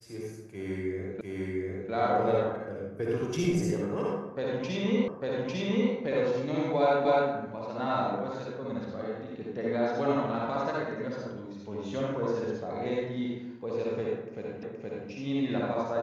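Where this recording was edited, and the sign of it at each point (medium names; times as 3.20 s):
1.21 s: repeat of the last 0.7 s
5.08 s: repeat of the last 0.85 s
7.05 s: repeat of the last 0.26 s
14.63 s: repeat of the last 0.47 s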